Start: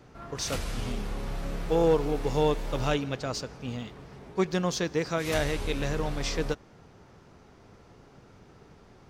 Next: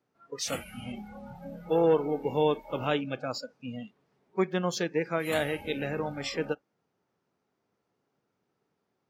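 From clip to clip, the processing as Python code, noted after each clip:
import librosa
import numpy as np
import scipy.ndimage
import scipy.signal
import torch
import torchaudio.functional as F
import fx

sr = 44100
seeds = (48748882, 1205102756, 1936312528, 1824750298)

y = fx.noise_reduce_blind(x, sr, reduce_db=23)
y = scipy.signal.sosfilt(scipy.signal.butter(2, 170.0, 'highpass', fs=sr, output='sos'), y)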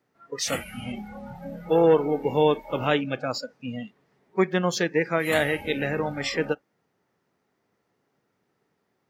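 y = fx.peak_eq(x, sr, hz=1900.0, db=6.5, octaves=0.28)
y = F.gain(torch.from_numpy(y), 5.0).numpy()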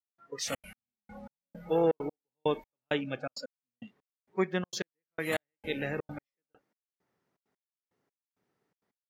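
y = fx.step_gate(x, sr, bpm=165, pattern='..xxxx.x....xx.', floor_db=-60.0, edge_ms=4.5)
y = F.gain(torch.from_numpy(y), -7.0).numpy()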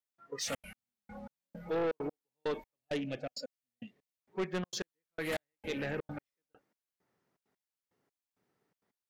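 y = 10.0 ** (-28.5 / 20.0) * np.tanh(x / 10.0 ** (-28.5 / 20.0))
y = fx.spec_box(y, sr, start_s=2.76, length_s=1.43, low_hz=750.0, high_hz=1700.0, gain_db=-8)
y = fx.doppler_dist(y, sr, depth_ms=0.13)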